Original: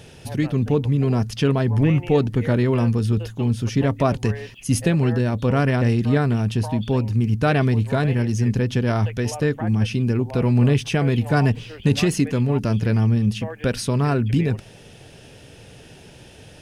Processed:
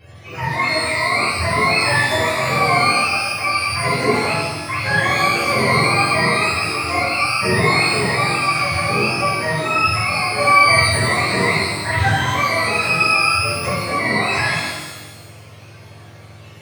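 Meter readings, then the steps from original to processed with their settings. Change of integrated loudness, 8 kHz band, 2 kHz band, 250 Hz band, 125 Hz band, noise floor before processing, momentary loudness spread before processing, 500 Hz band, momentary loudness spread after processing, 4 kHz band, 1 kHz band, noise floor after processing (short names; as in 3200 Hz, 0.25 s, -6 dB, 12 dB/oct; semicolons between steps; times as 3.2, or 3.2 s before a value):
+4.5 dB, +9.0 dB, +16.0 dB, -6.0 dB, -6.0 dB, -45 dBFS, 5 LU, +1.5 dB, 6 LU, +13.5 dB, +13.5 dB, -40 dBFS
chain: spectrum mirrored in octaves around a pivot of 530 Hz; shimmer reverb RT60 1.2 s, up +12 st, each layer -8 dB, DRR -10.5 dB; gain -6 dB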